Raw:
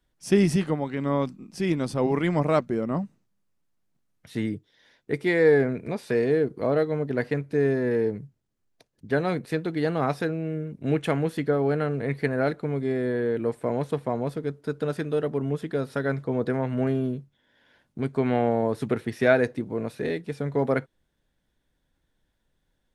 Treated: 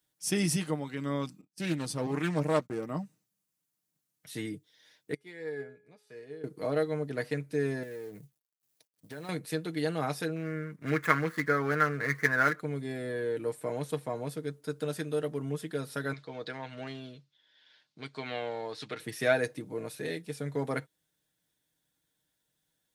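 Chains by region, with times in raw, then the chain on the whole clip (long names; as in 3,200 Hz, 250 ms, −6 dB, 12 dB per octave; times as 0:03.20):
0:01.41–0:02.87: noise gate −40 dBFS, range −40 dB + highs frequency-modulated by the lows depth 0.29 ms
0:05.14–0:06.44: high-shelf EQ 7,700 Hz −8.5 dB + tuned comb filter 420 Hz, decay 0.71 s, mix 80% + expander for the loud parts, over −46 dBFS
0:07.83–0:09.29: mu-law and A-law mismatch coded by A + downward compressor 12 to 1, threshold −30 dBFS
0:10.36–0:12.60: running median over 15 samples + flat-topped bell 1,500 Hz +15 dB 1.3 octaves
0:16.13–0:19.00: low-pass with resonance 4,300 Hz, resonance Q 2.3 + low-shelf EQ 500 Hz −11 dB
whole clip: high-pass filter 91 Hz; first-order pre-emphasis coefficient 0.8; comb filter 6.5 ms, depth 48%; level +5 dB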